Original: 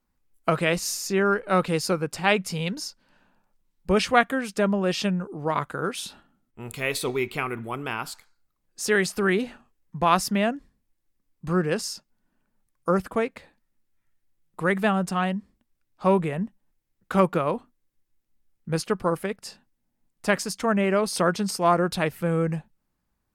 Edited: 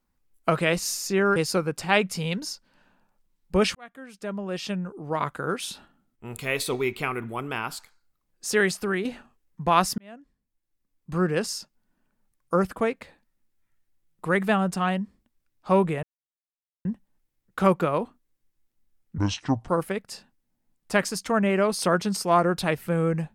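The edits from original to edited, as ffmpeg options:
-filter_complex "[0:a]asplit=8[a][b][c][d][e][f][g][h];[a]atrim=end=1.362[i];[b]atrim=start=1.708:end=4.1,asetpts=PTS-STARTPTS,afade=t=out:st=2.388:d=0.004:c=hsin[j];[c]atrim=start=4.1:end=9.4,asetpts=PTS-STARTPTS,afade=t=in:d=1.72,afade=t=out:st=4.89:d=0.41:silence=0.446684[k];[d]atrim=start=9.4:end=10.33,asetpts=PTS-STARTPTS,afade=t=in:d=0.004:c=hsin:silence=0.446684,afade=t=out:st=0.926:d=0.004:c=hsin[l];[e]atrim=start=10.33:end=16.38,asetpts=PTS-STARTPTS,afade=t=in:d=1.33,afade=t=out:st=6.046:d=0.004:c=hsin,apad=pad_dur=0.82[m];[f]atrim=start=16.38:end=18.714,asetpts=PTS-STARTPTS,afade=t=in:d=0.004:c=hsin[n];[g]atrim=start=18.71:end=19.02,asetpts=PTS-STARTPTS,asetrate=27342,aresample=44100[o];[h]atrim=start=19.016[p];[j][k][l][m][n]concat=n=5:v=0:a=1[q];[i][q]acrossfade=d=0.004:c1=hsin:c2=hsin[r];[r][o]acrossfade=d=0.004:c1=hsin:c2=hsin[s];[s][p]acrossfade=d=0.004:c1=hsin:c2=hsin"

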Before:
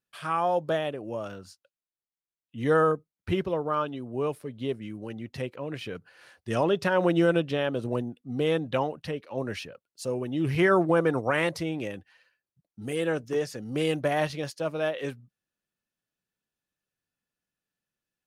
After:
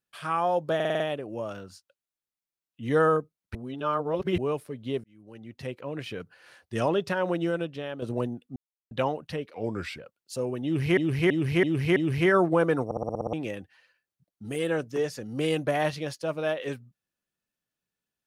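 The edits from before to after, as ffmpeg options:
-filter_complex "[0:a]asplit=26[a][b][c][d][e][f][g][h][i][j][k][l][m][n][o][p][q][r][s][t][u][v][w][x][y][z];[a]atrim=end=0.802[aa];[b]atrim=start=0.748:end=0.802[ab];[c]atrim=start=0.748:end=0.802[ac];[d]atrim=start=0.748:end=0.802[ad];[e]atrim=start=0.748:end=0.802[ae];[f]atrim=start=0.748:end=3.302[af];[g]atrim=start=3.298:end=4.132,asetpts=PTS-STARTPTS,areverse[ag];[h]atrim=start=4.128:end=4.79,asetpts=PTS-STARTPTS,afade=t=out:st=0.658:d=0.004:c=hsin[ah];[i]atrim=start=4.79:end=7.77,asetpts=PTS-STARTPTS,afade=t=in:d=0.83,afade=t=out:st=1.76:d=1.22:c=qua:silence=0.398107[ai];[j]atrim=start=7.77:end=8.31,asetpts=PTS-STARTPTS,afade=t=in:d=0.004:c=hsin:silence=0.398107,afade=t=out:st=0.536:d=0.004:c=hsin[aj];[k]atrim=start=8.31:end=8.66,asetpts=PTS-STARTPTS,volume=0[ak];[l]atrim=start=8.66:end=9.294,asetpts=PTS-STARTPTS,afade=t=in:d=0.004:c=hsin[al];[m]atrim=start=9.29:end=9.67,asetpts=PTS-STARTPTS,asetrate=37926,aresample=44100,atrim=end_sample=19486,asetpts=PTS-STARTPTS[am];[n]atrim=start=9.666:end=10.662[an];[o]atrim=start=10.328:end=10.662[ao];[p]atrim=start=10.328:end=10.662[ap];[q]atrim=start=10.328:end=10.662[aq];[r]atrim=start=10.328:end=11.282[ar];[s]atrim=start=11.218:end=11.282[as];[t]atrim=start=11.218:end=11.282[at];[u]atrim=start=11.218:end=11.282[au];[v]atrim=start=11.218:end=11.282[av];[w]atrim=start=11.218:end=11.282[aw];[x]atrim=start=11.218:end=11.282[ax];[y]atrim=start=11.218:end=11.282[ay];[z]atrim=start=11.698[az];[aa][ab]acrossfade=d=0.004:c1=hsin:c2=hsin[ba];[ba][ac]acrossfade=d=0.004:c1=hsin:c2=hsin[bb];[bb][ad]acrossfade=d=0.004:c1=hsin:c2=hsin[bc];[bc][ae]acrossfade=d=0.004:c1=hsin:c2=hsin[bd];[bd][af]acrossfade=d=0.004:c1=hsin:c2=hsin[be];[be][ag]acrossfade=d=0.004:c1=hsin:c2=hsin[bf];[ah][ai][aj][ak][al]concat=n=5:v=0:a=1[bg];[bf][bg]acrossfade=d=0.004:c1=hsin:c2=hsin[bh];[bh][am]acrossfade=d=0.004:c1=hsin:c2=hsin[bi];[bi][an]acrossfade=d=0.004:c1=hsin:c2=hsin[bj];[bj][ao]acrossfade=d=0.004:c1=hsin:c2=hsin[bk];[bk][ap]acrossfade=d=0.004:c1=hsin:c2=hsin[bl];[bl][aq]acrossfade=d=0.004:c1=hsin:c2=hsin[bm];[bm][ar]acrossfade=d=0.004:c1=hsin:c2=hsin[bn];[bn][as]acrossfade=d=0.004:c1=hsin:c2=hsin[bo];[bo][at]acrossfade=d=0.004:c1=hsin:c2=hsin[bp];[bp][au]acrossfade=d=0.004:c1=hsin:c2=hsin[bq];[bq][av]acrossfade=d=0.004:c1=hsin:c2=hsin[br];[br][aw]acrossfade=d=0.004:c1=hsin:c2=hsin[bs];[bs][ax]acrossfade=d=0.004:c1=hsin:c2=hsin[bt];[bt][ay]acrossfade=d=0.004:c1=hsin:c2=hsin[bu];[bu][az]acrossfade=d=0.004:c1=hsin:c2=hsin"

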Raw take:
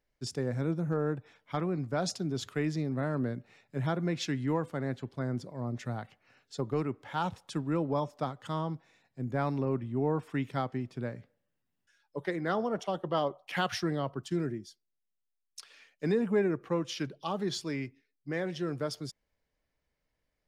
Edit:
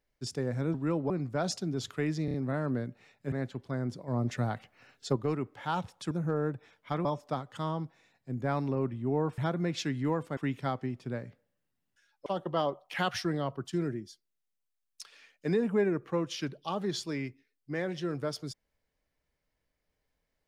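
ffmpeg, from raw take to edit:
-filter_complex "[0:a]asplit=14[a][b][c][d][e][f][g][h][i][j][k][l][m][n];[a]atrim=end=0.742[o];[b]atrim=start=7.588:end=7.952[p];[c]atrim=start=1.678:end=2.862[q];[d]atrim=start=2.828:end=2.862[r];[e]atrim=start=2.828:end=2.862[s];[f]atrim=start=2.828:end=3.812[t];[g]atrim=start=4.798:end=5.562[u];[h]atrim=start=5.558:end=6.642,asetpts=PTS-STARTPTS,volume=5dB[v];[i]atrim=start=6.638:end=7.592[w];[j]atrim=start=0.738:end=1.682[x];[k]atrim=start=7.948:end=10.282[y];[l]atrim=start=3.808:end=4.802[z];[m]atrim=start=10.278:end=12.172[aa];[n]atrim=start=12.838[ab];[o][p]acrossfade=d=0.004:c1=hsin:c2=hsin[ac];[ac][q]acrossfade=d=0.004:c1=hsin:c2=hsin[ad];[ad][r]acrossfade=d=0.004:c1=hsin:c2=hsin[ae];[ae][s]acrossfade=d=0.004:c1=hsin:c2=hsin[af];[af][t]acrossfade=d=0.004:c1=hsin:c2=hsin[ag];[ag][u]acrossfade=d=0.004:c1=hsin:c2=hsin[ah];[ah][v]acrossfade=d=0.004:c1=hsin:c2=hsin[ai];[ai][w]acrossfade=d=0.004:c1=hsin:c2=hsin[aj];[aj][x]acrossfade=d=0.004:c1=hsin:c2=hsin[ak];[ak][y]acrossfade=d=0.004:c1=hsin:c2=hsin[al];[al][z]acrossfade=d=0.004:c1=hsin:c2=hsin[am];[am][aa]acrossfade=d=0.004:c1=hsin:c2=hsin[an];[an][ab]acrossfade=d=0.004:c1=hsin:c2=hsin"

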